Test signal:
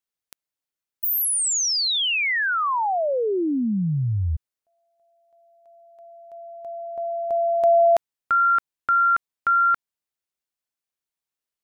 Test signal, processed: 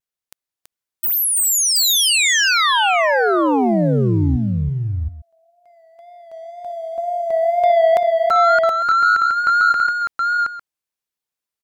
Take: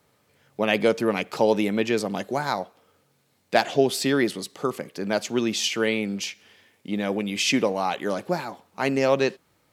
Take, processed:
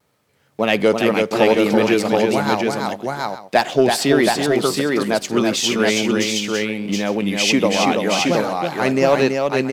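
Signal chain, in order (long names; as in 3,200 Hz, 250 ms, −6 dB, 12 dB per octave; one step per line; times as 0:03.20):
leveller curve on the samples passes 1
pitch vibrato 2 Hz 67 cents
multi-tap delay 330/722/853 ms −4.5/−3.5/−16 dB
level +1.5 dB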